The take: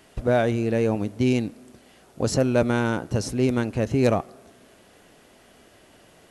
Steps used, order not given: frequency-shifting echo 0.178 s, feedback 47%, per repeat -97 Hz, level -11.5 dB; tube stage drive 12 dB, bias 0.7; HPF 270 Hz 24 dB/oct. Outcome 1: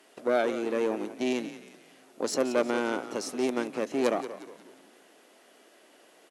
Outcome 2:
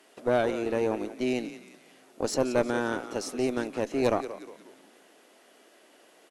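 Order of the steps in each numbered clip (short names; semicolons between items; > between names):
tube stage > frequency-shifting echo > HPF; frequency-shifting echo > HPF > tube stage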